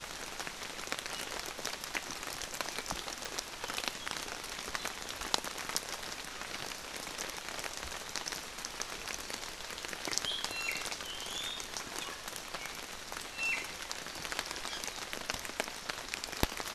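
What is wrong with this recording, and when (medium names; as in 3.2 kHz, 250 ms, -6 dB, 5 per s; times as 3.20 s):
3.25 s: pop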